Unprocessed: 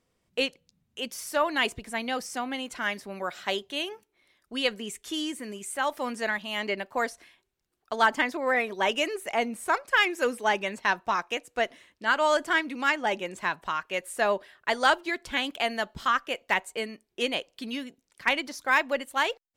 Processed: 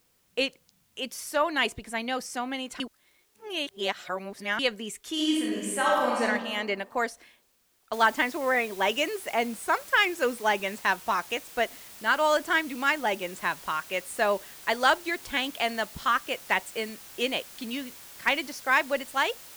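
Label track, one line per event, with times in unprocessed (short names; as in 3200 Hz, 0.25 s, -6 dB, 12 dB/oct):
2.800000	4.590000	reverse
5.130000	6.230000	reverb throw, RT60 1.4 s, DRR -4 dB
7.930000	7.930000	noise floor step -69 dB -47 dB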